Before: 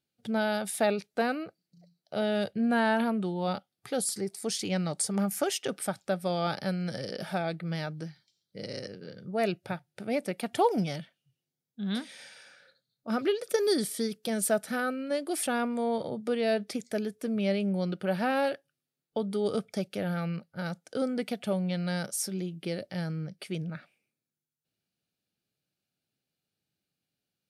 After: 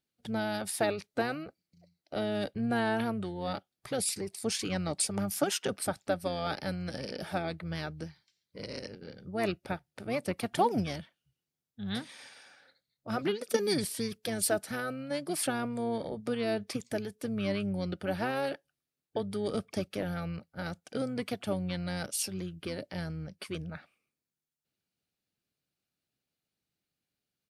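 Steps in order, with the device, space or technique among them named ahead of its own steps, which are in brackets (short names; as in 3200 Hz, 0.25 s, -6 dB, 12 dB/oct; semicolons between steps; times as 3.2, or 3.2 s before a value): harmonic-percussive split harmonic -5 dB; octave pedal (harmoniser -12 st -9 dB)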